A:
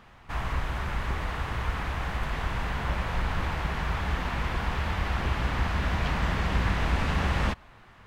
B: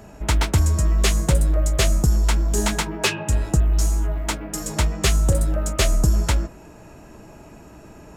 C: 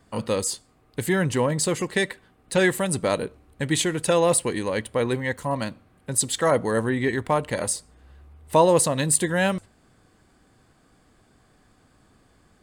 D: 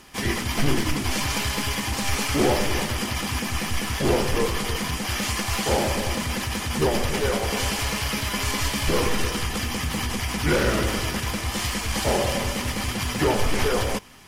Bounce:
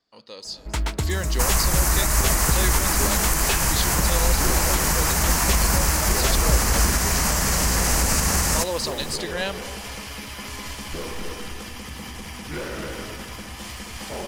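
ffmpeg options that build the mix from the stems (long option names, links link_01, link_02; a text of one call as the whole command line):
ffmpeg -i stem1.wav -i stem2.wav -i stem3.wav -i stem4.wav -filter_complex "[0:a]aexciter=amount=13:drive=8.3:freq=5300,adelay=1100,volume=-1.5dB,asplit=2[link_01][link_02];[link_02]volume=-12dB[link_03];[1:a]adelay=450,volume=-5.5dB[link_04];[2:a]bass=frequency=250:gain=-9,treble=frequency=4000:gain=12,highshelf=frequency=6600:width_type=q:width=3:gain=-12.5,volume=-18dB,asplit=2[link_05][link_06];[link_06]volume=-12.5dB[link_07];[3:a]asoftclip=type=hard:threshold=-16dB,adelay=2050,volume=-9.5dB,asplit=2[link_08][link_09];[link_09]volume=-5dB[link_10];[link_01][link_05]amix=inputs=2:normalize=0,dynaudnorm=framelen=160:gausssize=9:maxgain=13dB,alimiter=limit=-10.5dB:level=0:latency=1:release=144,volume=0dB[link_11];[link_03][link_07][link_10]amix=inputs=3:normalize=0,aecho=0:1:265:1[link_12];[link_04][link_08][link_11][link_12]amix=inputs=4:normalize=0,equalizer=frequency=100:width=3:gain=-7" out.wav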